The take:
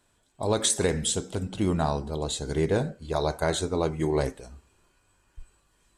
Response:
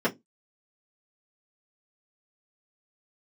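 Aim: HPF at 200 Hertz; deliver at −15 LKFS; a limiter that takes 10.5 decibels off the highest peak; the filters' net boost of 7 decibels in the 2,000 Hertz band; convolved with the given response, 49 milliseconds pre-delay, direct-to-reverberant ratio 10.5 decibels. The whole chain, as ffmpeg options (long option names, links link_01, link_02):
-filter_complex "[0:a]highpass=200,equalizer=frequency=2000:width_type=o:gain=9,alimiter=limit=-19dB:level=0:latency=1,asplit=2[link_01][link_02];[1:a]atrim=start_sample=2205,adelay=49[link_03];[link_02][link_03]afir=irnorm=-1:irlink=0,volume=-23dB[link_04];[link_01][link_04]amix=inputs=2:normalize=0,volume=15.5dB"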